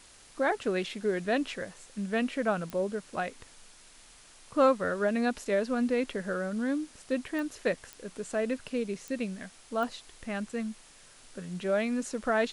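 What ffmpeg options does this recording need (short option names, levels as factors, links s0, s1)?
-af "adeclick=t=4,afwtdn=0.0022"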